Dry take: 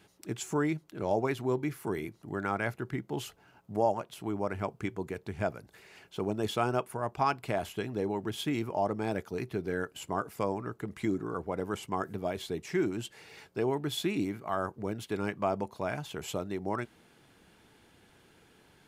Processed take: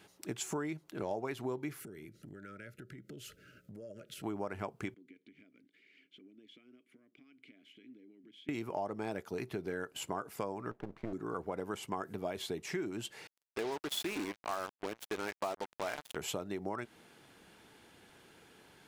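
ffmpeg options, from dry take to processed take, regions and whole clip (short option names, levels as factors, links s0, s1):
-filter_complex "[0:a]asettb=1/sr,asplit=3[s0][s1][s2];[s0]atrim=end=1.804[s3];[s1]atrim=start=1.8:end=4.23,asetpts=PTS-STARTPTS,afade=t=in:d=0.004:c=qsin,afade=t=out:st=2.426:d=0.004:c=qsin,asuperstop=centerf=890:order=20:qfactor=1.4,bass=f=250:g=6,treble=f=4000:g=1,acompressor=threshold=0.00562:ratio=12:attack=3.2:release=140:knee=1:detection=peak[s4];[s2]atrim=start=4.226[s5];[s3][s4]acrossfade=d=0.004:c1=hsin:c2=qsin[s6];[s6][s5]acrossfade=d=0.004:c1=qsin:c2=hsin,asettb=1/sr,asplit=3[s7][s8][s9];[s7]atrim=end=4.944[s10];[s8]atrim=start=4.94:end=8.49,asetpts=PTS-STARTPTS,afade=t=in:d=0.004:c=qsin,afade=t=out:st=3.546:d=0.004:c=qsin,equalizer=f=69:t=o:w=1.2:g=-10.5,acompressor=threshold=0.00794:ratio=12:attack=3.2:release=140:knee=1:detection=peak,asplit=3[s11][s12][s13];[s11]bandpass=f=270:t=q:w=8,volume=1[s14];[s12]bandpass=f=2290:t=q:w=8,volume=0.501[s15];[s13]bandpass=f=3010:t=q:w=8,volume=0.355[s16];[s14][s15][s16]amix=inputs=3:normalize=0[s17];[s9]atrim=start=8.486[s18];[s10][s17]acrossfade=d=0.004:c1=hsin:c2=qsin[s19];[s19][s18]acrossfade=d=0.004:c1=qsin:c2=hsin,asettb=1/sr,asplit=3[s20][s21][s22];[s20]atrim=end=10.714[s23];[s21]atrim=start=10.71:end=11.13,asetpts=PTS-STARTPTS,afade=t=in:d=0.004:c=qsin,afade=t=out:st=0.416:d=0.004:c=qsin,lowpass=1100,aeval=exprs='max(val(0),0)':c=same[s24];[s22]atrim=start=11.126[s25];[s23][s24]acrossfade=d=0.004:c1=hsin:c2=qsin[s26];[s26][s25]acrossfade=d=0.004:c1=qsin:c2=hsin,asettb=1/sr,asplit=3[s27][s28][s29];[s27]atrim=end=13.274[s30];[s28]atrim=start=13.27:end=16.16,asetpts=PTS-STARTPTS,afade=t=in:d=0.004:c=qsin,afade=t=out:st=2.886:d=0.004:c=qsin,equalizer=f=120:w=0.71:g=-12.5,acrusher=bits=5:mix=0:aa=0.5[s31];[s29]atrim=start=16.156[s32];[s30][s31]acrossfade=d=0.004:c1=hsin:c2=qsin[s33];[s33][s32]acrossfade=d=0.004:c1=qsin:c2=hsin,acompressor=threshold=0.0178:ratio=6,lowshelf=f=140:g=-8.5,volume=1.26"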